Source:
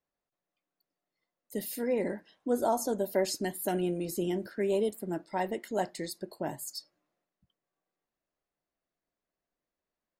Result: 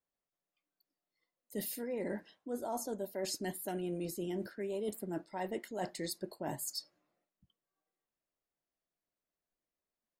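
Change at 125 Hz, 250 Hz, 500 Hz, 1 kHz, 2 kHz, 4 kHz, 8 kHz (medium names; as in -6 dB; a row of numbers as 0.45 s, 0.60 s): -5.5 dB, -6.5 dB, -8.0 dB, -8.0 dB, -6.5 dB, -3.0 dB, -3.0 dB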